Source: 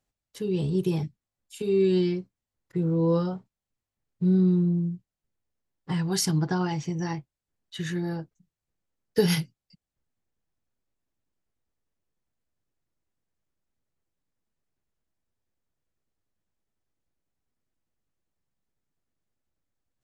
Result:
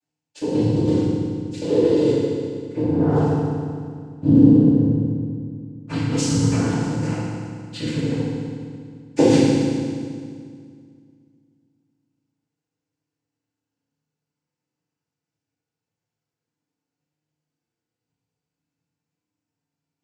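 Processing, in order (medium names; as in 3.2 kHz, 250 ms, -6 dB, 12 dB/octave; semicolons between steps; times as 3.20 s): noise-vocoded speech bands 8; transient shaper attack +7 dB, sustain -1 dB; FDN reverb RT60 2.1 s, low-frequency decay 1.3×, high-frequency decay 0.9×, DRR -9.5 dB; trim -7 dB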